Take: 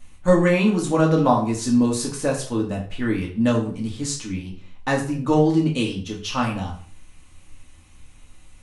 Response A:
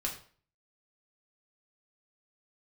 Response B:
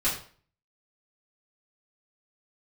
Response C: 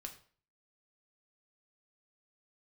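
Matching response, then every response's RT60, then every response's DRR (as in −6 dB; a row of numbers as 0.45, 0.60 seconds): A; 0.45, 0.45, 0.45 seconds; −2.0, −11.0, 3.0 decibels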